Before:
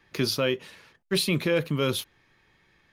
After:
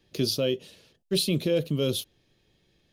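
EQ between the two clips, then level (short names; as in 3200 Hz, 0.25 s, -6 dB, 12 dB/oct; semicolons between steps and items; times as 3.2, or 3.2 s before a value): band shelf 1400 Hz -13.5 dB; 0.0 dB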